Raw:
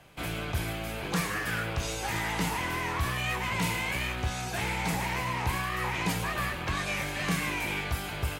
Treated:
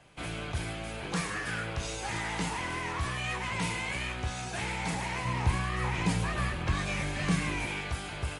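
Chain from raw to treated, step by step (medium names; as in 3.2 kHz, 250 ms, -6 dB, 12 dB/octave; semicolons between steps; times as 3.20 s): 5.25–7.66 s: bass shelf 260 Hz +8.5 dB; trim -2.5 dB; MP3 48 kbps 32 kHz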